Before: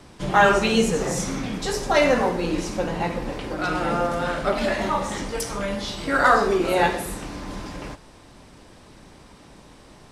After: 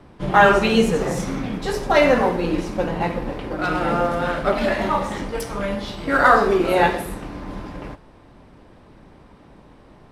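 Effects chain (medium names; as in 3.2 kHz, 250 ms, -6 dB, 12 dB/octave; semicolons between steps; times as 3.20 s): peaking EQ 7 kHz -8.5 dB 1.3 oct; in parallel at -9.5 dB: crossover distortion -33 dBFS; on the sum: tape noise reduction on one side only decoder only; trim +1 dB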